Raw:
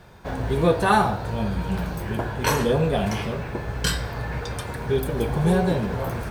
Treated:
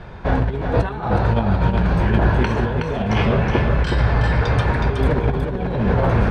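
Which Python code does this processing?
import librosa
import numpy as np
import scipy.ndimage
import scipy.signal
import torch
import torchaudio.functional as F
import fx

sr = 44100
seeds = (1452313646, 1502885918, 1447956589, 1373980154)

p1 = scipy.signal.sosfilt(scipy.signal.butter(2, 3100.0, 'lowpass', fs=sr, output='sos'), x)
p2 = fx.low_shelf(p1, sr, hz=65.0, db=8.0)
p3 = fx.over_compress(p2, sr, threshold_db=-25.0, ratio=-0.5)
p4 = p3 + fx.echo_single(p3, sr, ms=369, db=-5.0, dry=0)
y = p4 * 10.0 ** (7.0 / 20.0)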